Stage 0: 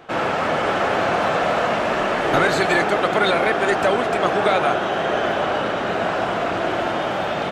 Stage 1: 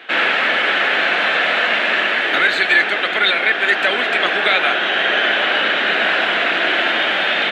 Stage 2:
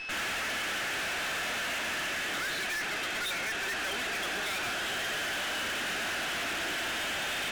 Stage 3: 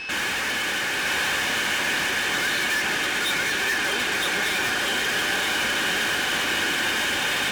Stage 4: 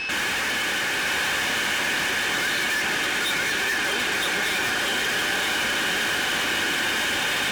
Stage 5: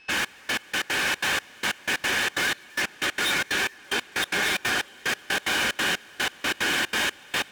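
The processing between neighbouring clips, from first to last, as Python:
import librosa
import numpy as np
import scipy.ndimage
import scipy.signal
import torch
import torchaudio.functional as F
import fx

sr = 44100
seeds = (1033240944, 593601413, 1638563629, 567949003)

y1 = scipy.signal.sosfilt(scipy.signal.butter(4, 210.0, 'highpass', fs=sr, output='sos'), x)
y1 = fx.band_shelf(y1, sr, hz=2500.0, db=15.5, octaves=1.7)
y1 = fx.rider(y1, sr, range_db=3, speed_s=0.5)
y1 = y1 * 10.0 ** (-4.0 / 20.0)
y2 = fx.graphic_eq_10(y1, sr, hz=(500, 1000, 2000, 8000), db=(-7, -3, -4, -12))
y2 = y2 + 10.0 ** (-34.0 / 20.0) * np.sin(2.0 * np.pi * 2600.0 * np.arange(len(y2)) / sr)
y2 = fx.tube_stage(y2, sr, drive_db=32.0, bias=0.6)
y3 = fx.notch_comb(y2, sr, f0_hz=670.0)
y3 = y3 + 10.0 ** (-3.0 / 20.0) * np.pad(y3, (int(964 * sr / 1000.0), 0))[:len(y3)]
y3 = y3 * 10.0 ** (8.5 / 20.0)
y4 = fx.env_flatten(y3, sr, amount_pct=50)
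y4 = y4 * 10.0 ** (-1.0 / 20.0)
y5 = fx.step_gate(y4, sr, bpm=184, pattern='.xx...x..x.xxx', floor_db=-24.0, edge_ms=4.5)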